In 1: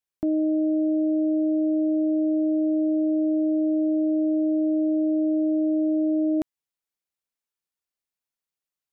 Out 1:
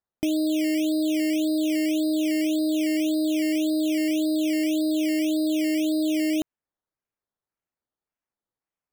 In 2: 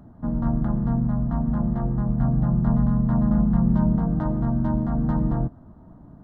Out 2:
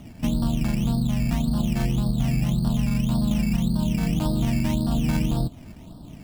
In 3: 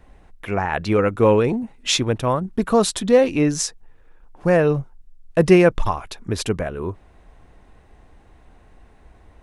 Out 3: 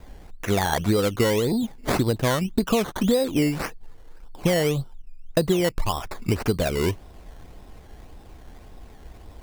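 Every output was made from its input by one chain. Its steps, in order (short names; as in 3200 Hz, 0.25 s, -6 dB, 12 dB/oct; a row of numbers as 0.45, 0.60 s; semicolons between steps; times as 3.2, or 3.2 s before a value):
high shelf 2300 Hz -10.5 dB; compressor 20:1, threshold -23 dBFS; decimation with a swept rate 14×, swing 60% 1.8 Hz; match loudness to -24 LUFS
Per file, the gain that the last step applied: +2.5, +5.0, +5.5 dB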